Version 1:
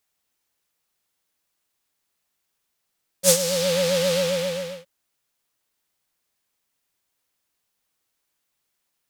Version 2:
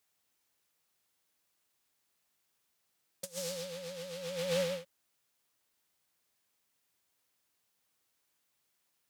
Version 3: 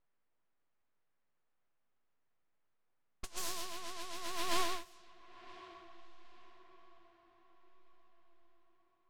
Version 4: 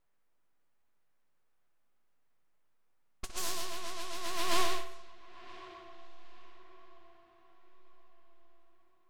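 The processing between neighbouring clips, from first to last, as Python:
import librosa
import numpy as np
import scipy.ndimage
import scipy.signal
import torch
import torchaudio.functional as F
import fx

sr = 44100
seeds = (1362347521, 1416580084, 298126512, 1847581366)

y1 = scipy.signal.sosfilt(scipy.signal.butter(2, 55.0, 'highpass', fs=sr, output='sos'), x)
y1 = fx.over_compress(y1, sr, threshold_db=-28.0, ratio=-0.5)
y1 = y1 * librosa.db_to_amplitude(-8.5)
y2 = np.abs(y1)
y2 = fx.echo_diffused(y2, sr, ms=1061, feedback_pct=44, wet_db=-15.5)
y2 = fx.env_lowpass(y2, sr, base_hz=1600.0, full_db=-38.5)
y2 = y2 * librosa.db_to_amplitude(2.0)
y3 = fx.echo_filtered(y2, sr, ms=62, feedback_pct=61, hz=4500.0, wet_db=-9.5)
y3 = y3 * librosa.db_to_amplitude(3.5)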